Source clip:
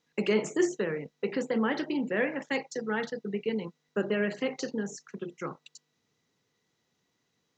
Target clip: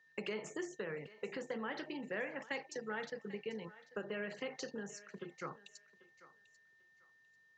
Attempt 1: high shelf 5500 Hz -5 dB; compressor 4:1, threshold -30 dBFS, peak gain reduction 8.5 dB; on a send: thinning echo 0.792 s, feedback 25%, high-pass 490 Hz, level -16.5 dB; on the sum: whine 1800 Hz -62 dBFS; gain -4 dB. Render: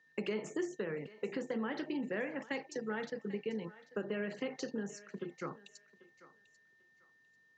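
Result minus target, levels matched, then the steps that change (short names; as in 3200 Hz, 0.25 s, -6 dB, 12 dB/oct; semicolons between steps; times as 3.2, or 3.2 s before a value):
250 Hz band +3.5 dB
add after compressor: bell 260 Hz -8 dB 1.5 oct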